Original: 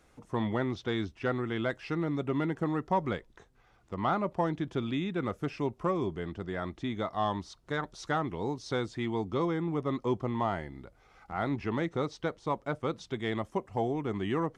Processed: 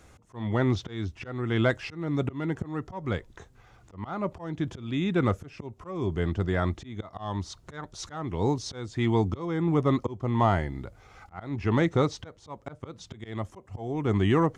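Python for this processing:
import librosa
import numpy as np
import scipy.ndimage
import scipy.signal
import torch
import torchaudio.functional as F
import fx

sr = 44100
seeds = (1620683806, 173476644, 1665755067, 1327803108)

y = fx.peak_eq(x, sr, hz=6900.0, db=4.5, octaves=0.36)
y = fx.auto_swell(y, sr, attack_ms=376.0)
y = fx.peak_eq(y, sr, hz=91.0, db=9.0, octaves=1.0)
y = y * librosa.db_to_amplitude(7.0)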